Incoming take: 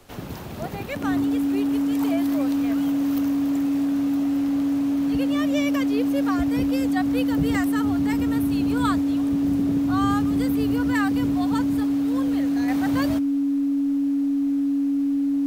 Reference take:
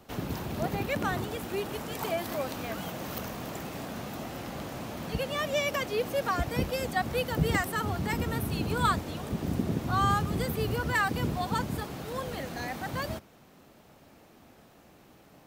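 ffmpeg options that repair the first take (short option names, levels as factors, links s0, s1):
-af "bandreject=f=280:w=30,agate=range=0.0891:threshold=0.2,asetnsamples=n=441:p=0,asendcmd='12.68 volume volume -5dB',volume=1"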